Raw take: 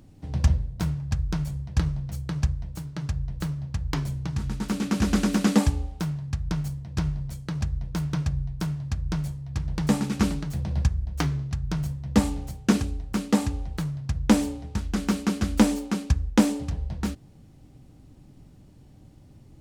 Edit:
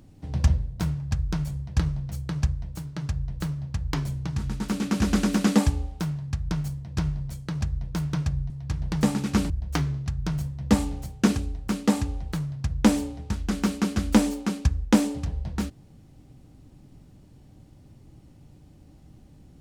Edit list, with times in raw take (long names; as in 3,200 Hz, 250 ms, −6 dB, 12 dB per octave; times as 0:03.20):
0:08.50–0:09.36: remove
0:10.36–0:10.95: remove